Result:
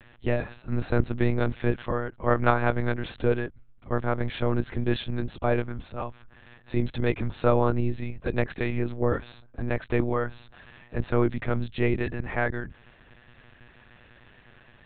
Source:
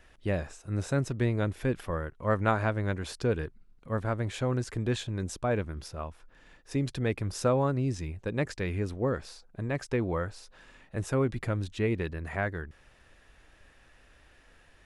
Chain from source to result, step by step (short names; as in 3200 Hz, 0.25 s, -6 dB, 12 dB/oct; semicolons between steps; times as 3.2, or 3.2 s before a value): monotone LPC vocoder at 8 kHz 120 Hz; gain +4.5 dB